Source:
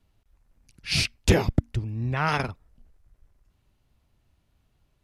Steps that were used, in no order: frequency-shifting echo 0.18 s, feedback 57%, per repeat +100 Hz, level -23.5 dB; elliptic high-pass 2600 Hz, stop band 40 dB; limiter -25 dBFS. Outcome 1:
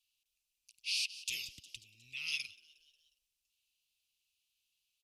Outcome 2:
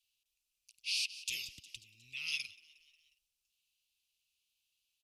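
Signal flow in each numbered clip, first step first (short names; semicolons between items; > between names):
elliptic high-pass > frequency-shifting echo > limiter; frequency-shifting echo > elliptic high-pass > limiter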